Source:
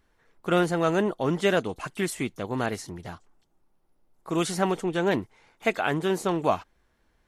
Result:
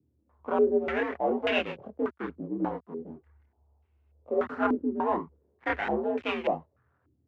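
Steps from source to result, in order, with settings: dead-time distortion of 0.27 ms; frequency shift +67 Hz; chorus voices 2, 0.43 Hz, delay 26 ms, depth 3 ms; step-sequenced low-pass 3.4 Hz 300–2600 Hz; trim -2.5 dB

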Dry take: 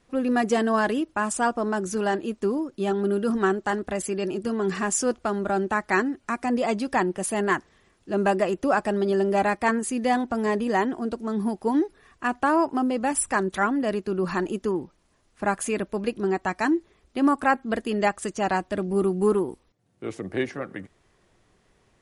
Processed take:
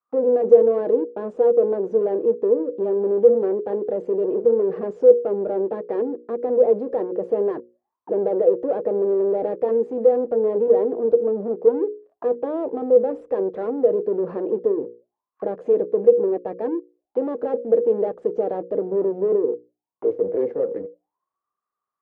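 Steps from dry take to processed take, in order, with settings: waveshaping leveller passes 5; tilt shelf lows +5.5 dB, about 930 Hz; hum notches 60/120/180/240/300/360/420/480/540 Hz; auto-wah 480–1200 Hz, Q 18, down, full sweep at -16.5 dBFS; distance through air 110 m; trim +7.5 dB

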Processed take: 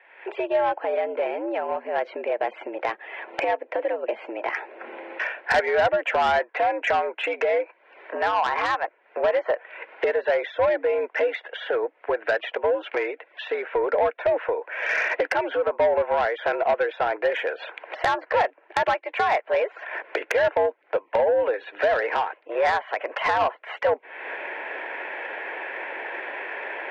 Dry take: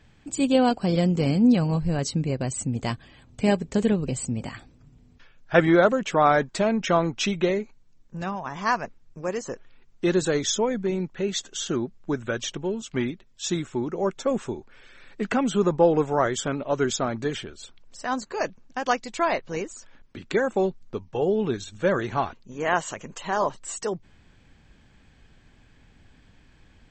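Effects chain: recorder AGC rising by 52 dB/s; mistuned SSB +91 Hz 410–2300 Hz; saturation -16.5 dBFS, distortion -14 dB; band-stop 1.2 kHz, Q 5.3; tape noise reduction on one side only encoder only; trim +2.5 dB

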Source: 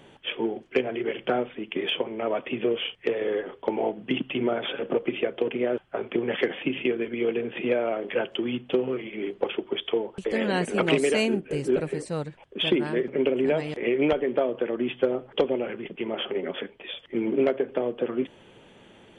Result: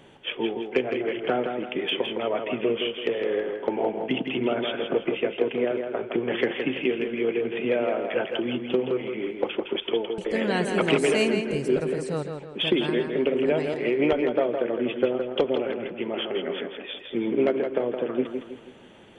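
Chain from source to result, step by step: tape echo 164 ms, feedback 44%, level -5 dB, low-pass 5 kHz

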